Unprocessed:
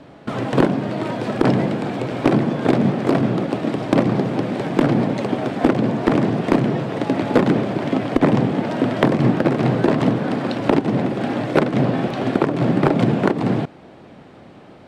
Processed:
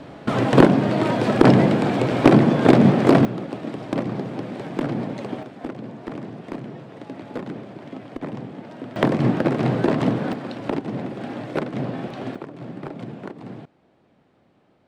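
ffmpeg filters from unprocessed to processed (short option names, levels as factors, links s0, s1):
-af "asetnsamples=n=441:p=0,asendcmd='3.25 volume volume -8.5dB;5.43 volume volume -16dB;8.96 volume volume -3dB;10.33 volume volume -9dB;12.35 volume volume -17.5dB',volume=1.5"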